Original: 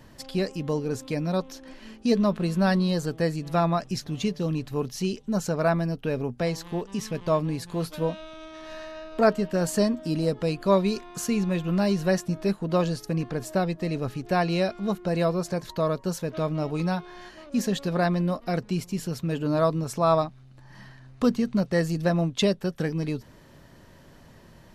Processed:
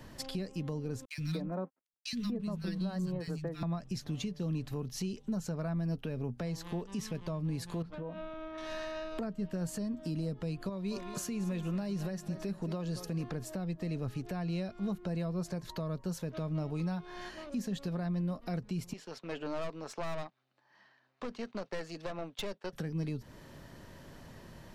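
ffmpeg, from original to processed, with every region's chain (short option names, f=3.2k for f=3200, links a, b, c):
-filter_complex "[0:a]asettb=1/sr,asplit=3[a][b][c];[a]atrim=end=1.054[d];[b]atrim=start=1.05:end=3.63,asetpts=PTS-STARTPTS,afade=t=in:d=0.004:c=qsin,afade=t=out:st=2.576:d=0.004:c=qsin,agate=range=-33dB:threshold=-32dB:ratio=3:release=100:detection=peak,aeval=exprs='sgn(val(0))*max(abs(val(0))-0.00299,0)':c=same,acrossover=split=190|1800[e][f][g];[e]adelay=70[h];[f]adelay=240[i];[h][i][g]amix=inputs=3:normalize=0,atrim=end_sample=113778[j];[c]atrim=start=3.626[k];[d][j]acrossfade=d=0.004:c1=hsin:c2=qsin[l];[l][k]acrossfade=d=0.004:c1=qsin:c2=hsin,asettb=1/sr,asplit=3[m][n][o];[m]atrim=end=7.824[p];[n]atrim=start=7.82:end=8.58,asetpts=PTS-STARTPTS,afade=t=in:d=0.004:c=qsin,afade=t=out:st=0.756:d=0.004:c=qsin,lowpass=1.8k,bandreject=f=60:t=h:w=6,bandreject=f=120:t=h:w=6,bandreject=f=180:t=h:w=6,bandreject=f=240:t=h:w=6,acompressor=threshold=-35dB:ratio=16:attack=3.2:release=140:knee=1:detection=peak[q];[o]atrim=start=8.576[r];[p][q]acrossfade=d=0.004:c1=hsin:c2=qsin[s];[s][r]acrossfade=d=0.004:c1=qsin:c2=hsin,asettb=1/sr,asplit=3[t][u][v];[t]atrim=end=10.694[w];[u]atrim=start=10.69:end=13.24,asetpts=PTS-STARTPTS,afade=t=in:d=0.004:c=qsin,afade=t=out:st=2.546:d=0.004:c=qsin,acompressor=threshold=-35dB:ratio=1.5:attack=3.2:release=140:knee=1:detection=peak,aecho=1:1:222|444|666|888:0.15|0.0613|0.0252|0.0103,atrim=end_sample=112455[x];[v]atrim=start=13.236[y];[w][x]acrossfade=d=0.004:c1=hsin:c2=qsin[z];[z][y]acrossfade=d=0.004:c1=qsin:c2=hsin,asettb=1/sr,asplit=3[aa][ab][ac];[aa]atrim=end=18.934[ad];[ab]atrim=start=18.93:end=22.73,asetpts=PTS-STARTPTS,afade=t=in:d=0.004:c=qsin,afade=t=out:st=3.796:d=0.004:c=qsin,agate=range=-9dB:threshold=-39dB:ratio=16:release=100:detection=peak,highpass=470,lowpass=4.7k,aeval=exprs='(tanh(25.1*val(0)+0.65)-tanh(0.65))/25.1':c=same[ae];[ac]atrim=start=22.726[af];[ad][ae]acrossfade=d=0.004:c1=hsin:c2=qsin[ag];[ag][af]acrossfade=d=0.004:c1=qsin:c2=hsin,acrossover=split=200[ah][ai];[ai]acompressor=threshold=-34dB:ratio=10[aj];[ah][aj]amix=inputs=2:normalize=0,alimiter=level_in=3.5dB:limit=-24dB:level=0:latency=1:release=347,volume=-3.5dB"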